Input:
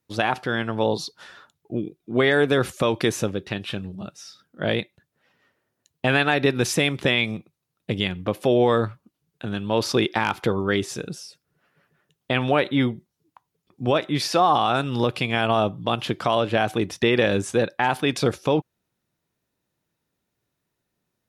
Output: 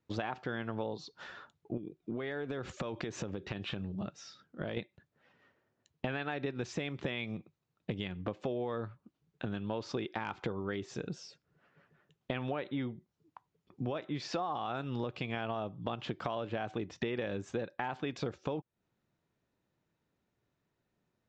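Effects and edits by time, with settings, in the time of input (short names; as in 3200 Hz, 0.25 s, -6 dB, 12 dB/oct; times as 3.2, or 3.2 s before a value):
1.77–4.77 compressor 5:1, threshold -29 dBFS
whole clip: elliptic low-pass 7300 Hz, stop band 40 dB; high shelf 3400 Hz -11.5 dB; compressor 6:1, threshold -34 dBFS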